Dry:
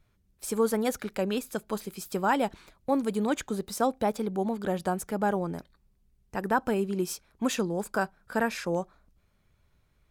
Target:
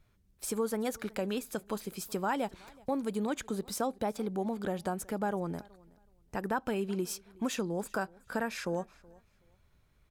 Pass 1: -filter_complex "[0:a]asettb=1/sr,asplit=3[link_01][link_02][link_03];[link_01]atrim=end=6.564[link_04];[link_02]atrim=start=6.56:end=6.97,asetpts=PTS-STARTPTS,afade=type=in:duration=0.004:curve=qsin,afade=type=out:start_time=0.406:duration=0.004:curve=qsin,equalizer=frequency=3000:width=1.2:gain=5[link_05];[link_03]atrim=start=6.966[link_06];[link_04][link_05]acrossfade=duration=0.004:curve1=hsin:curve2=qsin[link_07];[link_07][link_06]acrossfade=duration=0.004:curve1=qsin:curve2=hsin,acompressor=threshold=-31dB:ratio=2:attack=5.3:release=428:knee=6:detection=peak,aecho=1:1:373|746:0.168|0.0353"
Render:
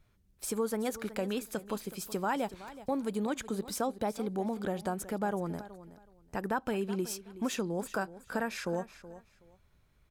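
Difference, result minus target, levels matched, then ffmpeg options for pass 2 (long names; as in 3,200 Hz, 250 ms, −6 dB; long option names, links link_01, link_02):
echo-to-direct +9 dB
-filter_complex "[0:a]asettb=1/sr,asplit=3[link_01][link_02][link_03];[link_01]atrim=end=6.564[link_04];[link_02]atrim=start=6.56:end=6.97,asetpts=PTS-STARTPTS,afade=type=in:duration=0.004:curve=qsin,afade=type=out:start_time=0.406:duration=0.004:curve=qsin,equalizer=frequency=3000:width=1.2:gain=5[link_05];[link_03]atrim=start=6.966[link_06];[link_04][link_05]acrossfade=duration=0.004:curve1=hsin:curve2=qsin[link_07];[link_07][link_06]acrossfade=duration=0.004:curve1=qsin:curve2=hsin,acompressor=threshold=-31dB:ratio=2:attack=5.3:release=428:knee=6:detection=peak,aecho=1:1:373|746:0.0596|0.0125"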